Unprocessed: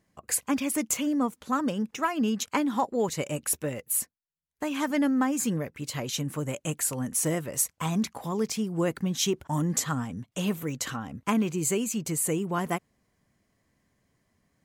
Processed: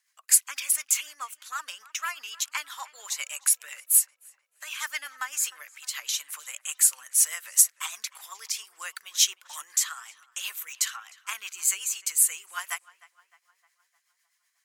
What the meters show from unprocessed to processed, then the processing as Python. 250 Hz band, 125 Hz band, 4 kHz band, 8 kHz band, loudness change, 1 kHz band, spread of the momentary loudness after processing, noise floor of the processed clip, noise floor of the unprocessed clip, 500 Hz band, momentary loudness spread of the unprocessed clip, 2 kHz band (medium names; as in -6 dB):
under -40 dB, under -40 dB, +5.0 dB, +7.5 dB, +3.0 dB, -7.5 dB, 17 LU, -75 dBFS, -75 dBFS, under -25 dB, 6 LU, +2.0 dB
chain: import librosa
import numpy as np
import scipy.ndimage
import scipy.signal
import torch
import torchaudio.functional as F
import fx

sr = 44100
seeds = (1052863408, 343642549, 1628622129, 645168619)

y = scipy.signal.sosfilt(scipy.signal.butter(4, 1200.0, 'highpass', fs=sr, output='sos'), x)
y = fx.high_shelf(y, sr, hz=3400.0, db=8.5)
y = fx.rotary(y, sr, hz=8.0)
y = fx.echo_filtered(y, sr, ms=306, feedback_pct=55, hz=2900.0, wet_db=-19.5)
y = y * 10.0 ** (2.5 / 20.0)